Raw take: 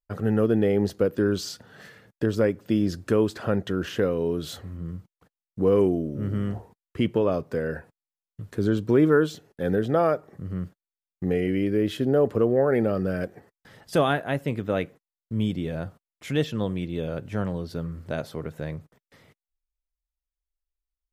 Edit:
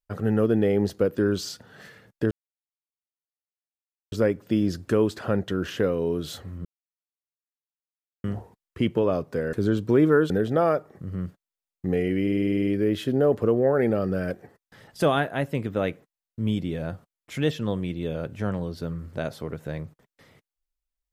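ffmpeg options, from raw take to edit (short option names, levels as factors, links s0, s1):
-filter_complex "[0:a]asplit=15[s0][s1][s2][s3][s4][s5][s6][s7][s8][s9][s10][s11][s12][s13][s14];[s0]atrim=end=2.31,asetpts=PTS-STARTPTS,afade=t=out:st=2.306:d=0.004:c=hsin,apad=pad_dur=1.81[s15];[s1]atrim=start=2.31:end=4.84,asetpts=PTS-STARTPTS,afade=t=in:d=0.004:c=hsin,afade=t=out:st=2.526:d=0.004:c=hsin[s16];[s2]atrim=start=4.84:end=6.43,asetpts=PTS-STARTPTS,volume=0[s17];[s3]atrim=start=6.43:end=7.722,asetpts=PTS-STARTPTS,afade=t=in:d=0.004:c=hsin[s18];[s4]atrim=start=8.528:end=9.302[s19];[s5]atrim=start=9.678:end=11.652[s20];[s6]atrim=start=11.598:end=11.652[s21];[s7]atrim=start=11.598:end=11.652[s22];[s8]atrim=start=11.598:end=11.652[s23];[s9]atrim=start=11.598:end=11.652[s24];[s10]atrim=start=11.598:end=11.652[s25];[s11]atrim=start=11.598:end=11.652[s26];[s12]atrim=start=11.598:end=11.652[s27];[s13]atrim=start=11.598:end=11.652[s28];[s14]atrim=start=11.598[s29];[s15][s16][s17][s18]concat=n=4:v=0:a=1[s30];[s30][s19]acrossfade=d=0.004:c1=hsin:c2=hsin[s31];[s31][s20]acrossfade=d=0.004:c1=hsin:c2=hsin[s32];[s32][s21]acrossfade=d=0.004:c1=hsin:c2=hsin[s33];[s33][s22]acrossfade=d=0.004:c1=hsin:c2=hsin[s34];[s34][s23]acrossfade=d=0.004:c1=hsin:c2=hsin[s35];[s35][s24]acrossfade=d=0.004:c1=hsin:c2=hsin[s36];[s36][s25]acrossfade=d=0.004:c1=hsin:c2=hsin[s37];[s37][s26]acrossfade=d=0.004:c1=hsin:c2=hsin[s38];[s38][s27]acrossfade=d=0.004:c1=hsin:c2=hsin[s39];[s39][s28]acrossfade=d=0.004:c1=hsin:c2=hsin[s40];[s40][s29]acrossfade=d=0.004:c1=hsin:c2=hsin"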